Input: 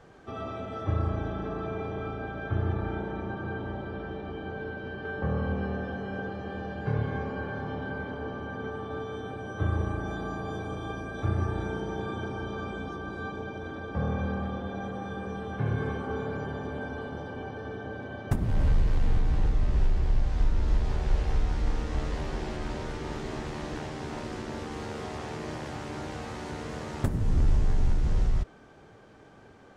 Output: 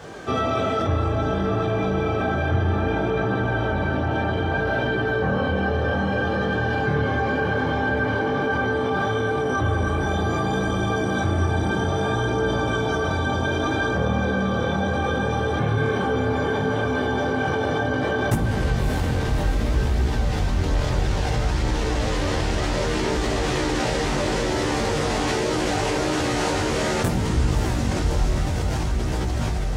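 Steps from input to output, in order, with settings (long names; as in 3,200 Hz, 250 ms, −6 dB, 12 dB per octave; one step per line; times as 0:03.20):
high-pass filter 59 Hz 12 dB per octave
parametric band 540 Hz +2.5 dB 0.76 octaves
on a send: feedback delay with all-pass diffusion 612 ms, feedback 75%, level −6 dB
on the sum: multi-voice chorus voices 2, 0.6 Hz, delay 20 ms, depth 4.2 ms
in parallel at 0 dB: compressor whose output falls as the input rises −40 dBFS, ratio −1
on the sum: high-shelf EQ 2,400 Hz +8 dB
level +7.5 dB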